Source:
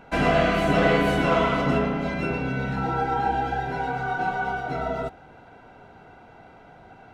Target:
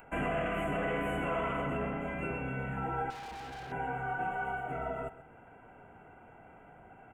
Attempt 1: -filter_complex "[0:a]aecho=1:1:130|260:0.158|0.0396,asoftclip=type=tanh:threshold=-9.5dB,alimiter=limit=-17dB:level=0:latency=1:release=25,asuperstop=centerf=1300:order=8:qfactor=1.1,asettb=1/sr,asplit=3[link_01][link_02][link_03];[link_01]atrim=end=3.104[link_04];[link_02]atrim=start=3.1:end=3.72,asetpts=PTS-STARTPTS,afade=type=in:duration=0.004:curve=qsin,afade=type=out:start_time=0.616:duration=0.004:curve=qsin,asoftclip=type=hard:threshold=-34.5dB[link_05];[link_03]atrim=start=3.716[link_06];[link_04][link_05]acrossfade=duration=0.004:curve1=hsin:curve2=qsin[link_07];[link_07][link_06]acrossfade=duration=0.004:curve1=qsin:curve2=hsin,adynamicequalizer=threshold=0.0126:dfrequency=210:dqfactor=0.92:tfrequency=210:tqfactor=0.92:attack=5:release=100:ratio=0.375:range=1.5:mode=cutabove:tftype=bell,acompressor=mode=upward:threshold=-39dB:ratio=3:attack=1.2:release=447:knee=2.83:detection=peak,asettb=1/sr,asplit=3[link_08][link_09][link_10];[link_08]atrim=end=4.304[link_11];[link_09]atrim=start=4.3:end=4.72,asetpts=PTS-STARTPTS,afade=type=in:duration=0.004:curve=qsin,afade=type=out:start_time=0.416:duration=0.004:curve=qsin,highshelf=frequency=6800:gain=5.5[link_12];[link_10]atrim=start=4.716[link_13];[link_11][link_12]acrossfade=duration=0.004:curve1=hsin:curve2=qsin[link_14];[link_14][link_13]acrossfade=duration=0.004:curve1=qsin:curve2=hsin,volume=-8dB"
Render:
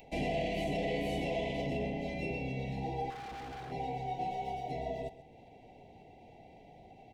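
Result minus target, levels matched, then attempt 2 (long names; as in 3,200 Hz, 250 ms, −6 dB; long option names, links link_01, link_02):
4,000 Hz band +6.0 dB
-filter_complex "[0:a]aecho=1:1:130|260:0.158|0.0396,asoftclip=type=tanh:threshold=-9.5dB,alimiter=limit=-17dB:level=0:latency=1:release=25,asuperstop=centerf=4700:order=8:qfactor=1.1,asettb=1/sr,asplit=3[link_01][link_02][link_03];[link_01]atrim=end=3.104[link_04];[link_02]atrim=start=3.1:end=3.72,asetpts=PTS-STARTPTS,afade=type=in:duration=0.004:curve=qsin,afade=type=out:start_time=0.616:duration=0.004:curve=qsin,asoftclip=type=hard:threshold=-34.5dB[link_05];[link_03]atrim=start=3.716[link_06];[link_04][link_05]acrossfade=duration=0.004:curve1=hsin:curve2=qsin[link_07];[link_07][link_06]acrossfade=duration=0.004:curve1=qsin:curve2=hsin,adynamicequalizer=threshold=0.0126:dfrequency=210:dqfactor=0.92:tfrequency=210:tqfactor=0.92:attack=5:release=100:ratio=0.375:range=1.5:mode=cutabove:tftype=bell,acompressor=mode=upward:threshold=-39dB:ratio=3:attack=1.2:release=447:knee=2.83:detection=peak,asettb=1/sr,asplit=3[link_08][link_09][link_10];[link_08]atrim=end=4.304[link_11];[link_09]atrim=start=4.3:end=4.72,asetpts=PTS-STARTPTS,afade=type=in:duration=0.004:curve=qsin,afade=type=out:start_time=0.416:duration=0.004:curve=qsin,highshelf=frequency=6800:gain=5.5[link_12];[link_10]atrim=start=4.716[link_13];[link_11][link_12]acrossfade=duration=0.004:curve1=hsin:curve2=qsin[link_14];[link_14][link_13]acrossfade=duration=0.004:curve1=qsin:curve2=hsin,volume=-8dB"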